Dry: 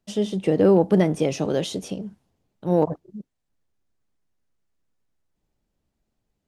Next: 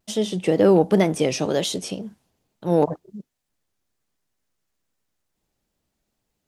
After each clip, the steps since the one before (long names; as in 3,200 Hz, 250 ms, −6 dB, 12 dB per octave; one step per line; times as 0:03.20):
spectral tilt +1.5 dB per octave
tape wow and flutter 75 cents
level +3 dB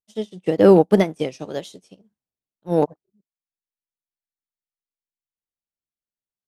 expander for the loud parts 2.5 to 1, over −35 dBFS
level +5 dB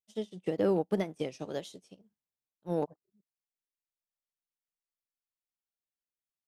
downward compressor 2 to 1, threshold −24 dBFS, peak gain reduction 9.5 dB
level −7 dB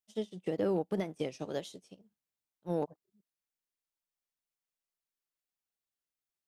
brickwall limiter −22 dBFS, peak gain reduction 5.5 dB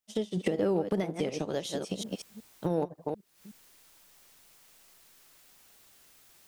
delay that plays each chunk backwards 185 ms, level −12 dB
camcorder AGC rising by 77 dB per second
level +3 dB